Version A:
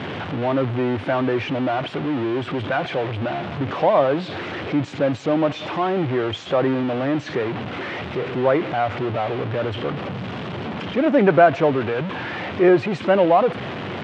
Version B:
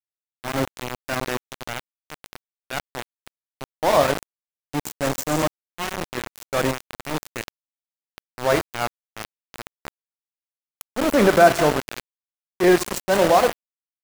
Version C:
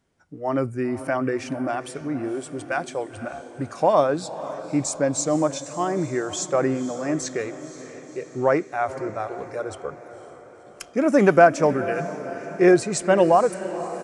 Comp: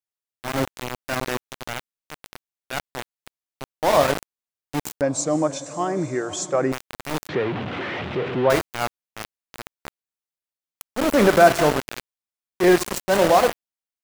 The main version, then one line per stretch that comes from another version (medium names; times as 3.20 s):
B
5.01–6.72 s: from C
7.29–8.50 s: from A